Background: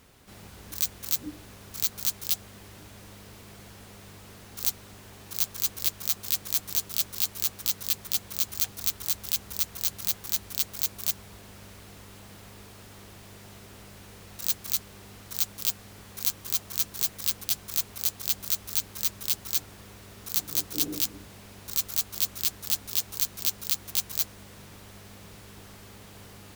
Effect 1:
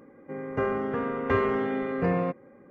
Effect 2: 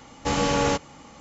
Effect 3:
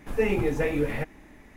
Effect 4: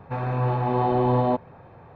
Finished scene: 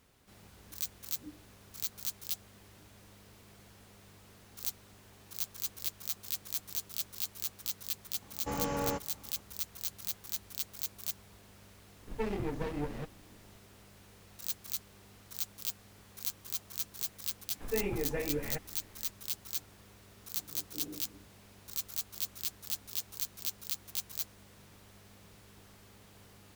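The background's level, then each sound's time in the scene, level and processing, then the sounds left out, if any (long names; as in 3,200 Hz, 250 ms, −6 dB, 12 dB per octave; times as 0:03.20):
background −9.5 dB
0:08.21: mix in 2 −11 dB + parametric band 3,800 Hz −10.5 dB 1.3 octaves
0:12.01: mix in 3 −9 dB + windowed peak hold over 33 samples
0:17.54: mix in 3 −9.5 dB
not used: 1, 4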